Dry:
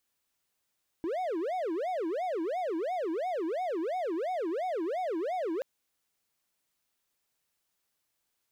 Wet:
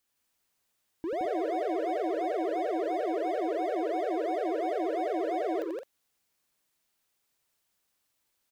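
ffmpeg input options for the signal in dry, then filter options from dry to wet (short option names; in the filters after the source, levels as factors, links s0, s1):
-f lavfi -i "aevalsrc='0.0422*(1-4*abs(mod((532.5*t-215.5/(2*PI*2.9)*sin(2*PI*2.9*t))+0.25,1)-0.5))':d=4.58:s=44100"
-af "aecho=1:1:87.46|169.1|212.8:0.501|0.708|0.251"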